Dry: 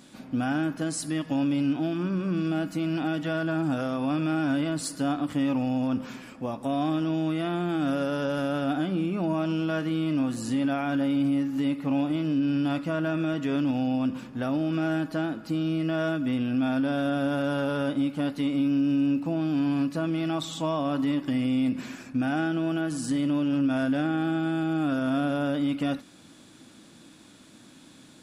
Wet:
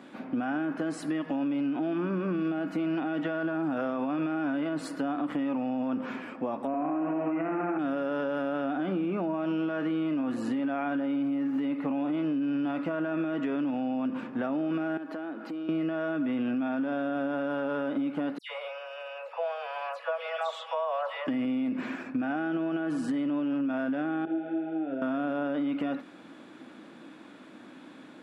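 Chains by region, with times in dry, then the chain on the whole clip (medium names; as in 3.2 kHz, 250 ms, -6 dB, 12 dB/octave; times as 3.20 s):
6.67–7.79 s: elliptic low-pass 2.5 kHz + flutter echo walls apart 11.5 m, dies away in 1.1 s
14.97–15.69 s: high-pass 210 Hz 24 dB/octave + compression 8:1, threshold -38 dBFS
18.38–21.27 s: Chebyshev high-pass 460 Hz, order 10 + phase dispersion lows, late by 118 ms, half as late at 2.7 kHz
24.25–25.02 s: tape spacing loss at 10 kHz 30 dB + static phaser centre 460 Hz, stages 4 + detune thickener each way 25 cents
whole clip: three-band isolator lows -21 dB, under 210 Hz, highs -21 dB, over 2.6 kHz; peak limiter -25.5 dBFS; compression, threshold -33 dBFS; trim +6.5 dB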